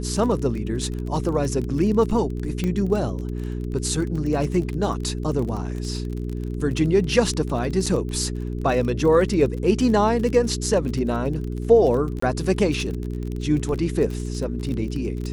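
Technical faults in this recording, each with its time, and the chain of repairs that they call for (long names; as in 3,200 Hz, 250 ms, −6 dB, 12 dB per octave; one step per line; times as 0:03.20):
surface crackle 28 per second −28 dBFS
mains hum 60 Hz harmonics 7 −28 dBFS
0:02.64: click −13 dBFS
0:07.86–0:07.87: drop-out 5.1 ms
0:12.20–0:12.22: drop-out 24 ms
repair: click removal
hum removal 60 Hz, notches 7
repair the gap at 0:07.86, 5.1 ms
repair the gap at 0:12.20, 24 ms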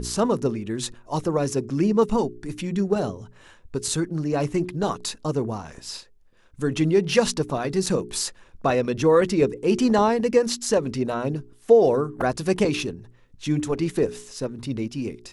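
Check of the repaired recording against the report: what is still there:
none of them is left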